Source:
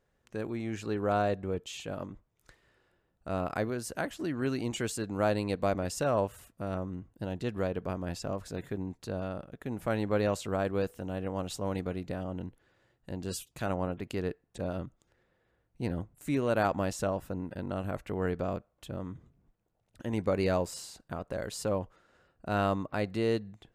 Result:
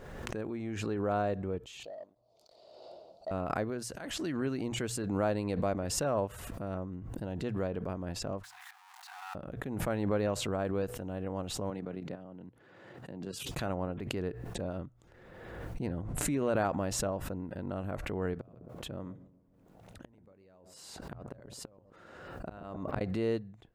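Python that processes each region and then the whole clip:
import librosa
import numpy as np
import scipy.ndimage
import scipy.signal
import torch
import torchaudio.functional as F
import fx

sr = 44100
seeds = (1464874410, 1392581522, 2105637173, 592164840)

y = fx.chain(x, sr, fx.double_bandpass(hz=1700.0, octaves=2.8),
    fx.leveller(passes=1), at=(1.83, 3.31))
y = fx.chain(y, sr, fx.peak_eq(hz=5500.0, db=9.0, octaves=2.8),
    fx.auto_swell(attack_ms=181.0), at=(3.82, 4.37))
y = fx.chain(y, sr, fx.zero_step(step_db=-36.0),
    fx.brickwall_highpass(low_hz=710.0),
    fx.level_steps(step_db=11), at=(8.43, 9.35))
y = fx.chain(y, sr, fx.highpass(hz=120.0, slope=24),
    fx.high_shelf(hz=7300.0, db=-10.0),
    fx.level_steps(step_db=9), at=(11.7, 13.49))
y = fx.chain(y, sr, fx.lowpass(hz=11000.0, slope=12),
    fx.pre_swell(db_per_s=39.0), at=(15.88, 16.64))
y = fx.chain(y, sr, fx.highpass(hz=76.0, slope=6),
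    fx.gate_flip(shuts_db=-26.0, range_db=-30),
    fx.echo_wet_lowpass(ms=134, feedback_pct=39, hz=690.0, wet_db=-14), at=(18.34, 23.01))
y = fx.high_shelf(y, sr, hz=2600.0, db=-8.0)
y = fx.hum_notches(y, sr, base_hz=60, count=2)
y = fx.pre_swell(y, sr, db_per_s=35.0)
y = y * 10.0 ** (-2.5 / 20.0)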